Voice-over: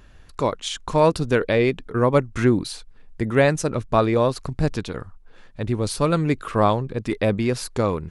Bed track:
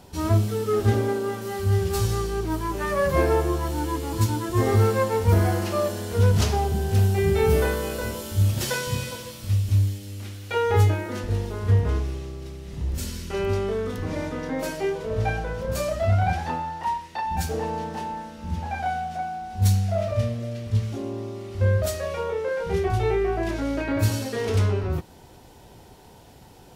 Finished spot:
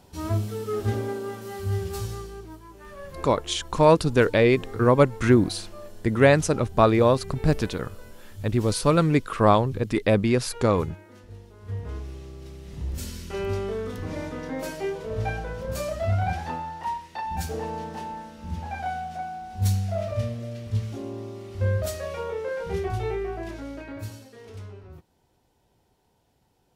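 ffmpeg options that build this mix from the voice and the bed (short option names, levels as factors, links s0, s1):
-filter_complex "[0:a]adelay=2850,volume=1.06[s0];[1:a]volume=2.99,afade=t=out:st=1.76:d=0.85:silence=0.223872,afade=t=in:st=11.57:d=1.05:silence=0.177828,afade=t=out:st=22.62:d=1.67:silence=0.16788[s1];[s0][s1]amix=inputs=2:normalize=0"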